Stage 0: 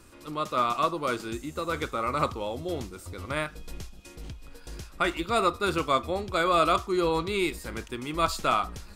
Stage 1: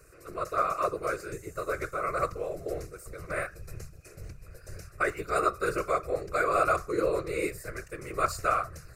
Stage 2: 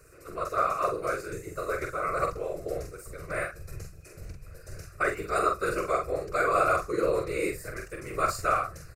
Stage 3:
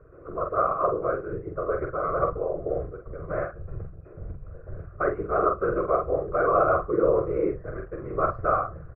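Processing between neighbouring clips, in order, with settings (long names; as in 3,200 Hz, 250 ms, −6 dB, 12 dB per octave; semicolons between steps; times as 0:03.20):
random phases in short frames; phaser with its sweep stopped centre 900 Hz, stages 6
double-tracking delay 45 ms −5 dB
low-pass filter 1,200 Hz 24 dB per octave; level +5 dB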